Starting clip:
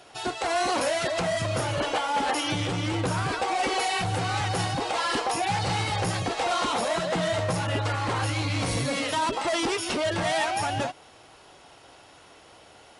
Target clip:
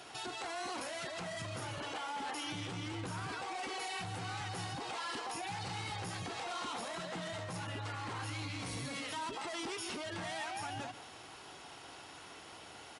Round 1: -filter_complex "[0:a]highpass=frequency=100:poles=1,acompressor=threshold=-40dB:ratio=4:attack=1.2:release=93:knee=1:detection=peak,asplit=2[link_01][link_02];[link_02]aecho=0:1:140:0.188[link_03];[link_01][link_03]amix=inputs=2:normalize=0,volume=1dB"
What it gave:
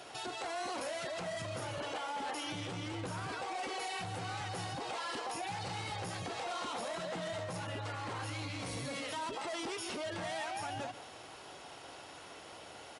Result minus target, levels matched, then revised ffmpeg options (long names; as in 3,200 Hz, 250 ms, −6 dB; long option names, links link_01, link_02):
500 Hz band +3.0 dB
-filter_complex "[0:a]highpass=frequency=100:poles=1,acompressor=threshold=-40dB:ratio=4:attack=1.2:release=93:knee=1:detection=peak,equalizer=frequency=560:width_type=o:width=0.61:gain=-6.5,asplit=2[link_01][link_02];[link_02]aecho=0:1:140:0.188[link_03];[link_01][link_03]amix=inputs=2:normalize=0,volume=1dB"